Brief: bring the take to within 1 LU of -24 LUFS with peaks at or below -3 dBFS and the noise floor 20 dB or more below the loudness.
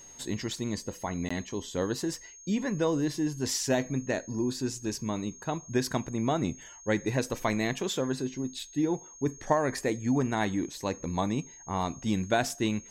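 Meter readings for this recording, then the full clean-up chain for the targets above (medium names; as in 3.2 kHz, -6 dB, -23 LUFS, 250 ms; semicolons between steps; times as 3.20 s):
dropouts 1; longest dropout 15 ms; steady tone 6.5 kHz; tone level -48 dBFS; loudness -31.0 LUFS; peak level -11.5 dBFS; loudness target -24.0 LUFS
-> interpolate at 1.29 s, 15 ms; band-stop 6.5 kHz, Q 30; trim +7 dB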